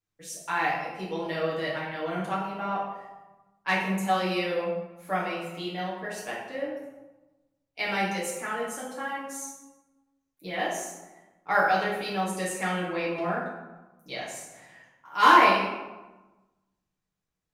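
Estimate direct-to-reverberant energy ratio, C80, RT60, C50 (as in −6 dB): −7.5 dB, 4.5 dB, 1.1 s, 2.0 dB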